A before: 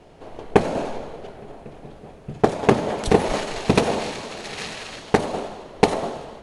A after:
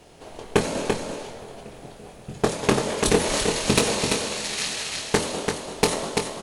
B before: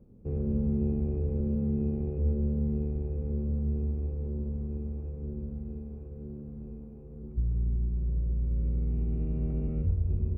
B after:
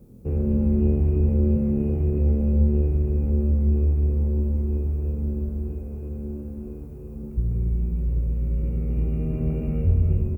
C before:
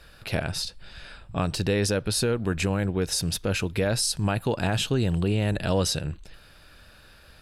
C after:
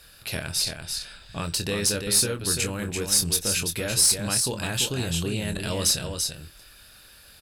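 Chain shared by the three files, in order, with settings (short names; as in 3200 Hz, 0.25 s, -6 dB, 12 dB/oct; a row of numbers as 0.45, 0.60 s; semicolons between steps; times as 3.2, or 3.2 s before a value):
pre-emphasis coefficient 0.8; echo 0.339 s -6 dB; tube stage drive 18 dB, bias 0.25; doubler 24 ms -8 dB; dynamic EQ 730 Hz, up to -6 dB, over -54 dBFS, Q 4.7; match loudness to -24 LUFS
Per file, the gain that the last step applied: +11.0, +21.0, +9.0 dB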